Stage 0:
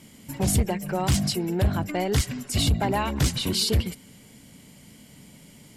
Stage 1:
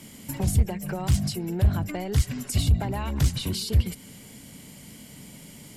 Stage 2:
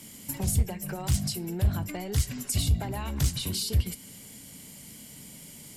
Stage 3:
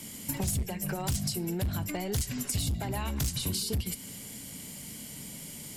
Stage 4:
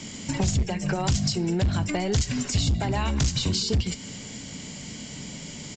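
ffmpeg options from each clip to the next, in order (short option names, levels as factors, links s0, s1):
-filter_complex "[0:a]highshelf=f=8800:g=5,acrossover=split=140[s0][s1];[s1]acompressor=threshold=0.02:ratio=6[s2];[s0][s2]amix=inputs=2:normalize=0,volume=1.5"
-af "highshelf=f=4300:g=8.5,flanger=delay=9.8:depth=3.9:regen=-77:speed=0.48:shape=triangular"
-filter_complex "[0:a]asoftclip=type=hard:threshold=0.0794,acrossover=split=2000|4700[s0][s1][s2];[s0]acompressor=threshold=0.0224:ratio=4[s3];[s1]acompressor=threshold=0.00447:ratio=4[s4];[s2]acompressor=threshold=0.0158:ratio=4[s5];[s3][s4][s5]amix=inputs=3:normalize=0,volume=1.5"
-af "aresample=16000,aresample=44100,volume=2.37"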